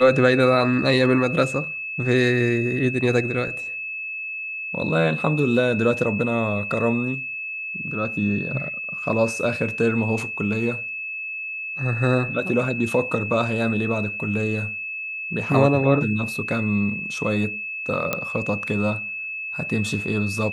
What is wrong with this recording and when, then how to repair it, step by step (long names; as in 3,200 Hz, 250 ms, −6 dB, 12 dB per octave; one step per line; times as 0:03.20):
whistle 2,600 Hz −28 dBFS
0:18.13: click −7 dBFS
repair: click removal
notch filter 2,600 Hz, Q 30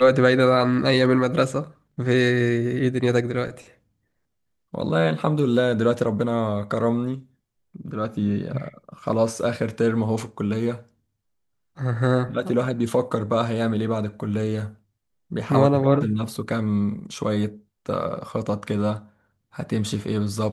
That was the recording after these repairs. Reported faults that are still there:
none of them is left